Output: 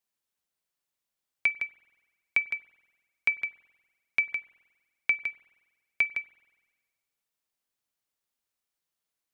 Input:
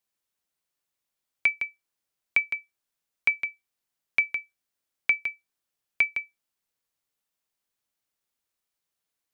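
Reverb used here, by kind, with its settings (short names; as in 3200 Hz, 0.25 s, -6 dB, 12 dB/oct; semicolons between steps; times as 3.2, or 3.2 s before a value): spring tank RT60 1.4 s, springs 47 ms, chirp 80 ms, DRR 18.5 dB; gain -2.5 dB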